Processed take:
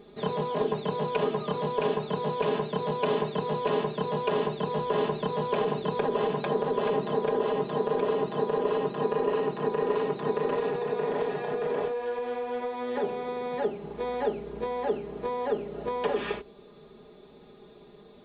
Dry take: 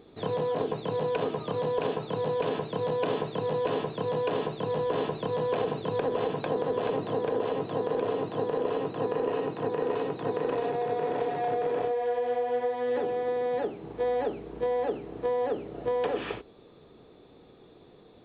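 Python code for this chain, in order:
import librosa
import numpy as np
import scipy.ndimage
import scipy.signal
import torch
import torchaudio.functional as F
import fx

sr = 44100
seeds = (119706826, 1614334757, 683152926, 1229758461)

y = x + 0.85 * np.pad(x, (int(4.9 * sr / 1000.0), 0))[:len(x)]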